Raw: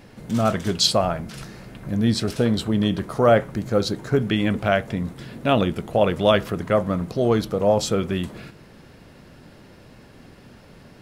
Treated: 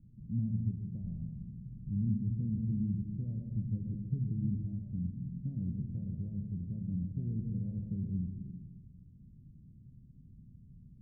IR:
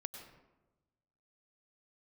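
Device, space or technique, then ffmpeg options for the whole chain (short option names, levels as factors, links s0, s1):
club heard from the street: -filter_complex "[0:a]alimiter=limit=0.224:level=0:latency=1:release=250,lowpass=f=180:w=0.5412,lowpass=f=180:w=1.3066[s0];[1:a]atrim=start_sample=2205[s1];[s0][s1]afir=irnorm=-1:irlink=0,volume=0.794"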